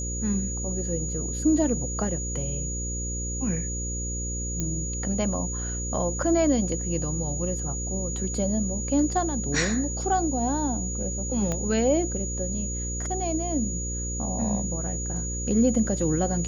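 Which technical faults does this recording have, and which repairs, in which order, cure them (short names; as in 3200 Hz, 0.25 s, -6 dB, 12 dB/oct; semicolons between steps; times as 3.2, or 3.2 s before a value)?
buzz 60 Hz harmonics 9 -32 dBFS
tone 6800 Hz -32 dBFS
4.6 pop -15 dBFS
11.52 pop -15 dBFS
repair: de-click; de-hum 60 Hz, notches 9; notch 6800 Hz, Q 30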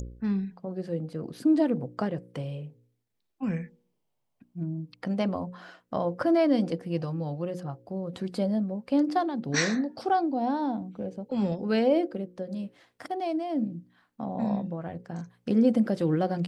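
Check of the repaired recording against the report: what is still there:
11.52 pop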